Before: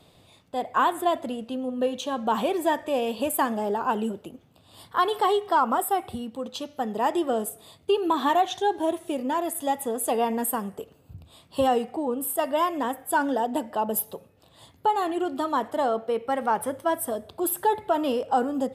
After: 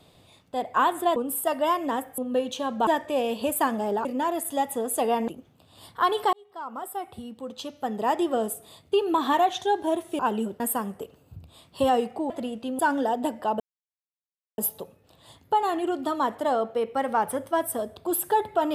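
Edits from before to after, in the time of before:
1.16–1.65 s: swap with 12.08–13.10 s
2.34–2.65 s: delete
3.83–4.24 s: swap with 9.15–10.38 s
5.29–6.98 s: fade in
13.91 s: insert silence 0.98 s

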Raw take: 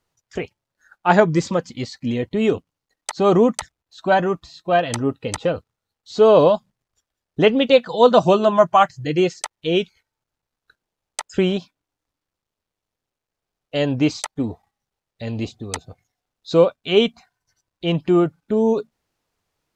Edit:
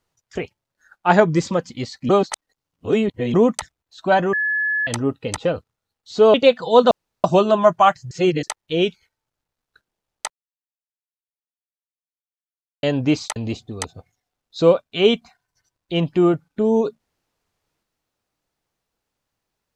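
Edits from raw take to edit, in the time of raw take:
2.09–3.34 s: reverse
4.33–4.87 s: bleep 1.71 kHz -18 dBFS
6.34–7.61 s: delete
8.18 s: insert room tone 0.33 s
9.05–9.37 s: reverse
11.24–13.77 s: mute
14.30–15.28 s: delete

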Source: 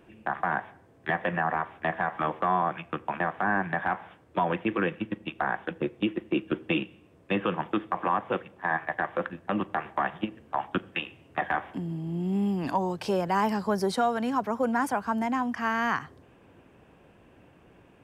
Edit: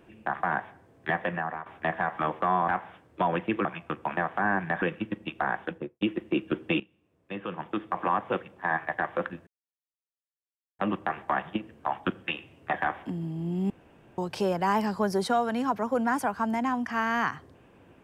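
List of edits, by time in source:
1.18–1.66 s: fade out, to -12 dB
3.85–4.82 s: move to 2.68 s
5.65–6.01 s: studio fade out
6.80–8.01 s: fade in quadratic, from -15.5 dB
9.47 s: insert silence 1.32 s
12.38–12.86 s: room tone

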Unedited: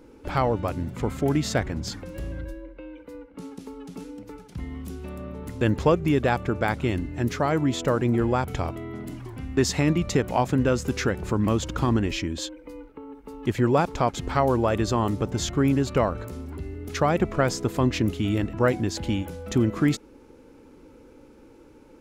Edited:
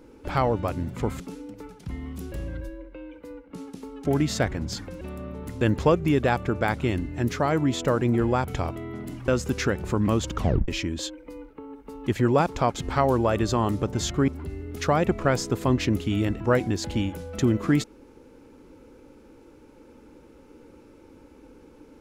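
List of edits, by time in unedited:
1.20–2.16 s: swap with 3.89–5.01 s
9.28–10.67 s: delete
11.75 s: tape stop 0.32 s
15.67–16.41 s: delete

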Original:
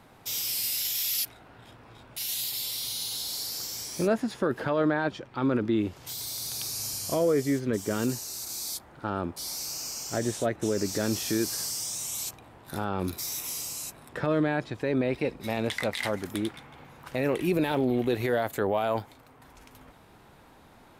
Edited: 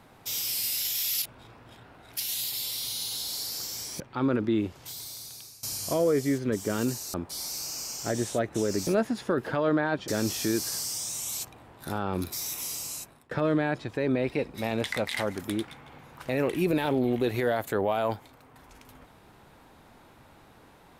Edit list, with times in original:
1.22–2.20 s: reverse
4.00–5.21 s: move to 10.94 s
5.79–6.84 s: fade out, to -21.5 dB
8.35–9.21 s: delete
13.80–14.17 s: fade out, to -21 dB

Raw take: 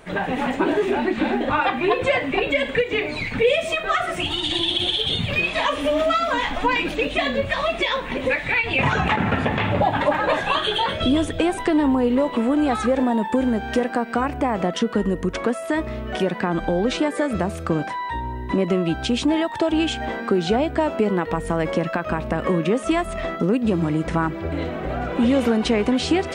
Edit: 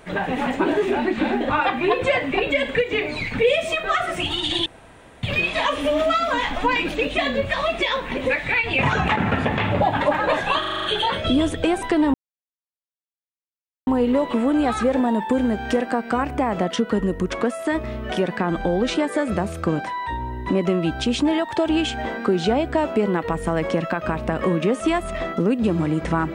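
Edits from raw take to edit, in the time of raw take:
4.66–5.23 s: room tone
10.60 s: stutter 0.04 s, 7 plays
11.90 s: insert silence 1.73 s

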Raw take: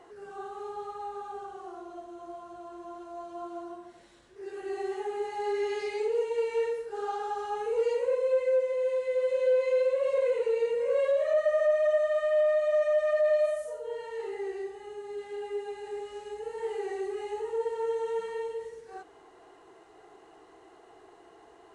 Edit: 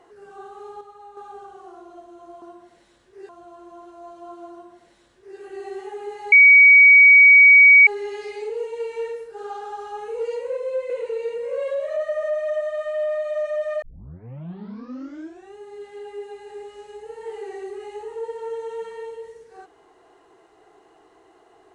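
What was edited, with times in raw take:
0.81–1.17 s: gain -6 dB
3.65–4.52 s: copy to 2.42 s
5.45 s: add tone 2.26 kHz -6.5 dBFS 1.55 s
8.48–10.27 s: delete
13.19 s: tape start 1.75 s

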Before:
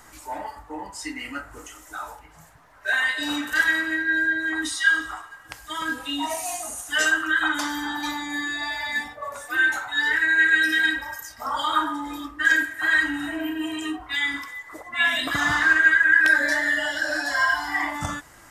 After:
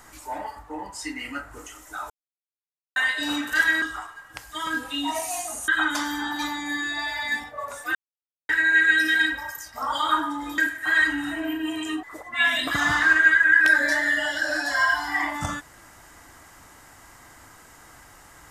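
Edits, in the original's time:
2.10–2.96 s: mute
3.82–4.97 s: delete
6.83–7.32 s: delete
9.59–10.13 s: mute
12.22–12.54 s: delete
13.99–14.63 s: delete

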